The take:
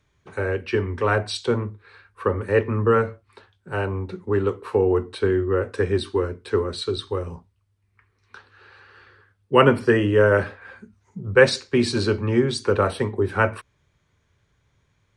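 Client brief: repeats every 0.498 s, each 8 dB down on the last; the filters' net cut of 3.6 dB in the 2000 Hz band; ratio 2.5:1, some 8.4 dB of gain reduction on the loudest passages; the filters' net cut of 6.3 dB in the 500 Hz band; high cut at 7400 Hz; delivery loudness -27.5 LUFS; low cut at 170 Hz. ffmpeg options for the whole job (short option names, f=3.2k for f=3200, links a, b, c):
-af "highpass=170,lowpass=7.4k,equalizer=f=500:t=o:g=-7.5,equalizer=f=2k:t=o:g=-4.5,acompressor=threshold=-27dB:ratio=2.5,aecho=1:1:498|996|1494|1992|2490:0.398|0.159|0.0637|0.0255|0.0102,volume=4dB"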